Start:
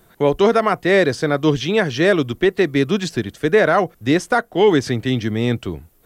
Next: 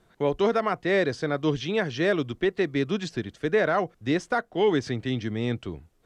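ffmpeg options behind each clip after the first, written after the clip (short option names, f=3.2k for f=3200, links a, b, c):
-af "lowpass=6.6k,volume=-8.5dB"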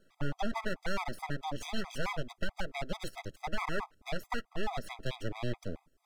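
-af "aeval=exprs='abs(val(0))':c=same,acompressor=threshold=-26dB:ratio=2.5,afftfilt=real='re*gt(sin(2*PI*4.6*pts/sr)*(1-2*mod(floor(b*sr/1024/650),2)),0)':imag='im*gt(sin(2*PI*4.6*pts/sr)*(1-2*mod(floor(b*sr/1024/650),2)),0)':win_size=1024:overlap=0.75,volume=-1dB"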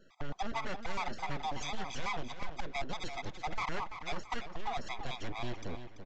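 -filter_complex "[0:a]aresample=16000,asoftclip=type=tanh:threshold=-33.5dB,aresample=44100,asplit=2[a][b];[b]adelay=336,lowpass=f=4.6k:p=1,volume=-9dB,asplit=2[c][d];[d]adelay=336,lowpass=f=4.6k:p=1,volume=0.38,asplit=2[e][f];[f]adelay=336,lowpass=f=4.6k:p=1,volume=0.38,asplit=2[g][h];[h]adelay=336,lowpass=f=4.6k:p=1,volume=0.38[i];[a][c][e][g][i]amix=inputs=5:normalize=0,volume=4dB"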